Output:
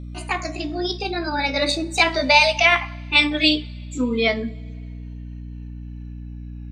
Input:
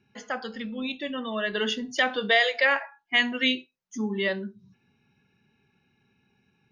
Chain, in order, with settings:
pitch glide at a constant tempo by +6.5 semitones ending unshifted
coupled-rooms reverb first 0.28 s, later 2.3 s, from −19 dB, DRR 14 dB
mains hum 60 Hz, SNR 11 dB
level +7.5 dB

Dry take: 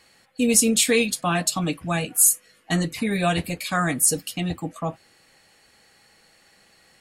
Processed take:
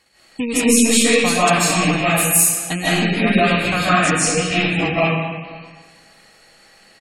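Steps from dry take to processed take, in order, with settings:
loose part that buzzes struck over −27 dBFS, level −17 dBFS
0:03.76–0:04.50: low-pass filter 7,300 Hz 24 dB per octave
transient designer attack +10 dB, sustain −10 dB
in parallel at +2.5 dB: brickwall limiter −8 dBFS, peak gain reduction 10.5 dB
on the sum: soft clipping −5 dBFS, distortion −14 dB
single-tap delay 515 ms −21.5 dB
convolution reverb RT60 1.4 s, pre-delay 110 ms, DRR −11 dB
gate on every frequency bin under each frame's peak −30 dB strong
level −11 dB

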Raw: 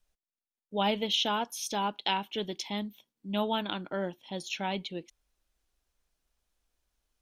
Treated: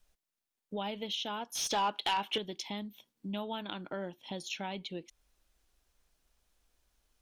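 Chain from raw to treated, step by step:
downward compressor 3 to 1, threshold −44 dBFS, peak gain reduction 16 dB
0:01.55–0:02.38: mid-hump overdrive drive 19 dB, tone 3,600 Hz, clips at −24.5 dBFS
level +5 dB

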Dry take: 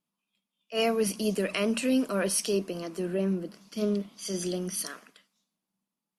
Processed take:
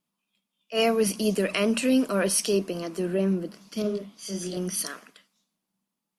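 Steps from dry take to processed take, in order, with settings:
0:03.82–0:04.57: micro pitch shift up and down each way 32 cents
level +3.5 dB

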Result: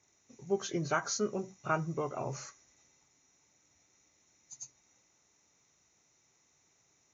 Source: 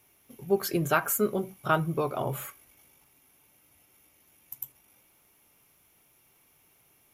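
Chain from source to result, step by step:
hearing-aid frequency compression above 1,600 Hz 1.5 to 1
high-pass filter 53 Hz
level −6.5 dB

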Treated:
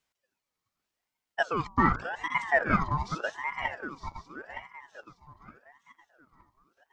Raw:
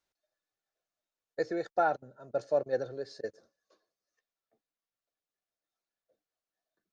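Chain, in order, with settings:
feedback delay that plays each chunk backwards 458 ms, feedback 59%, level −6 dB
0:01.54–0:02.82: hum removal 62.11 Hz, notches 15
ring modulator whose carrier an LFO sweeps 1,000 Hz, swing 55%, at 0.85 Hz
level +6.5 dB

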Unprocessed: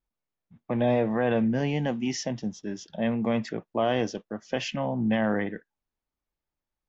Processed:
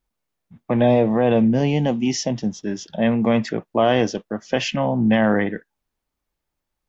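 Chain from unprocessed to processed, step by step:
0:00.87–0:02.36: parametric band 1,600 Hz −8.5 dB 0.81 octaves
level +8 dB

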